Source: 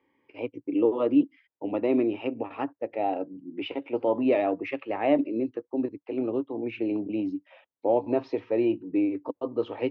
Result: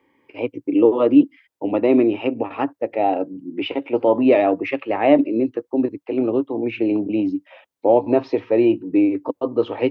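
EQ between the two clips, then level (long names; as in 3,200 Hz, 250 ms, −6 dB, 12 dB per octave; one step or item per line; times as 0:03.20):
no EQ move
+8.5 dB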